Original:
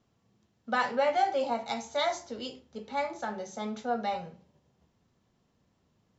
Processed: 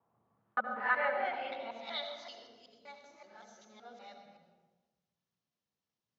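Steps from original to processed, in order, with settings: local time reversal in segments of 0.19 s; air absorption 230 m; band-pass sweep 920 Hz -> 6500 Hz, 0.1–2.7; tilt -1.5 dB/oct; on a send: HPF 61 Hz + reverb RT60 1.2 s, pre-delay 67 ms, DRR 4 dB; on the sum: gain +5 dB

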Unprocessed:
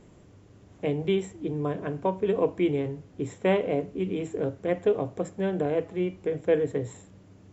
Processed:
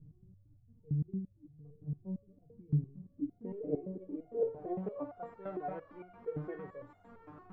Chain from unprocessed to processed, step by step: zero-crossing step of -37.5 dBFS; low-pass sweep 120 Hz -> 1200 Hz, 2.36–5.16; stepped resonator 8.8 Hz 150–710 Hz; gain +1.5 dB

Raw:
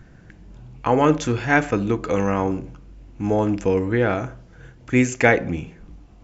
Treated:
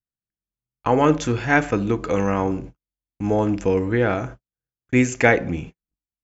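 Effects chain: gate -34 dBFS, range -52 dB

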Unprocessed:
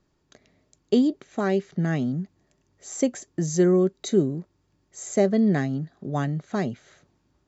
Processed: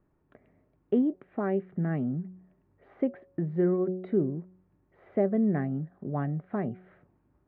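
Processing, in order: Bessel low-pass 1400 Hz, order 8; de-hum 184.4 Hz, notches 4; in parallel at -1 dB: compressor, threshold -35 dBFS, peak gain reduction 18.5 dB; on the sum: gain -6 dB

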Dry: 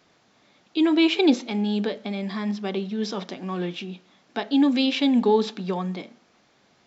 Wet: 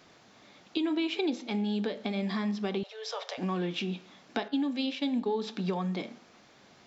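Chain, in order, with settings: 4.48–5.42 expander -18 dBFS; compressor 6:1, threshold -32 dBFS, peak gain reduction 17.5 dB; flange 0.32 Hz, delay 7.9 ms, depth 6.7 ms, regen -87%; 2.83–3.38 steep high-pass 450 Hz 96 dB/oct; gain +8 dB

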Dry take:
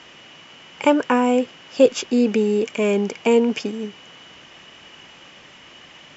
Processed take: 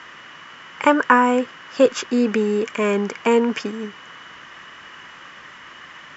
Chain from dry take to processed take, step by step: band shelf 1400 Hz +11 dB 1.2 oct; gain -1 dB

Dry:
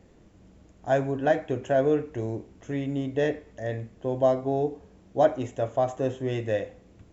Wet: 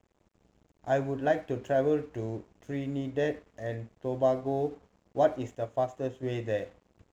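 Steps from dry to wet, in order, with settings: crossover distortion -53 dBFS; 5.55–6.23 upward expander 1.5:1, over -32 dBFS; gain -3.5 dB

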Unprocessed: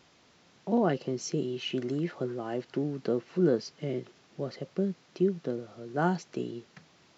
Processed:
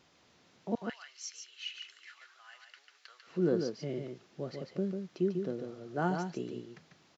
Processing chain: 0.75–3.27 HPF 1400 Hz 24 dB/oct; echo 0.145 s -5.5 dB; gain -4.5 dB

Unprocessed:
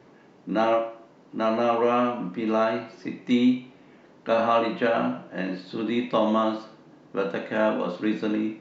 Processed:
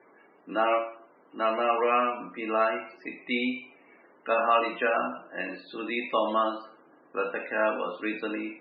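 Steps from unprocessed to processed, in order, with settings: loudest bins only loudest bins 64; speaker cabinet 450–4000 Hz, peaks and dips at 580 Hz -3 dB, 870 Hz -3 dB, 1300 Hz +3 dB, 2400 Hz +9 dB

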